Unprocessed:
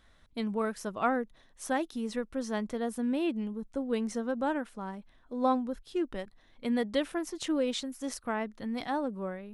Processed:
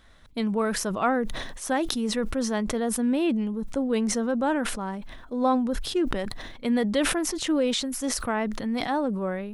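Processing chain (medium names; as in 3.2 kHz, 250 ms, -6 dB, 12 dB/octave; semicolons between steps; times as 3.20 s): in parallel at -1 dB: peak limiter -25 dBFS, peak gain reduction 8.5 dB; on the sum: decay stretcher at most 38 dB/s; trim +1 dB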